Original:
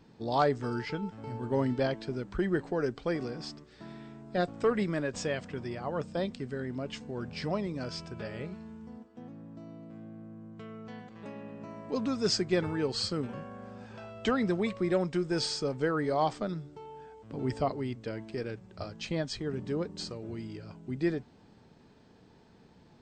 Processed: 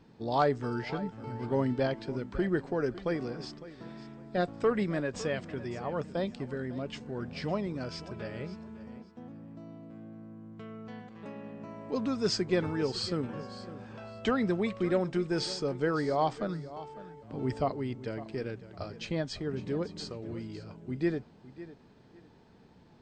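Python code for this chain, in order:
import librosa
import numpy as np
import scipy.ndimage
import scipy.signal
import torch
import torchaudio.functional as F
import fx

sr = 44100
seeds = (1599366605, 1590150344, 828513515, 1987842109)

y = fx.high_shelf(x, sr, hz=5700.0, db=-6.0)
y = fx.echo_feedback(y, sr, ms=555, feedback_pct=23, wet_db=-16)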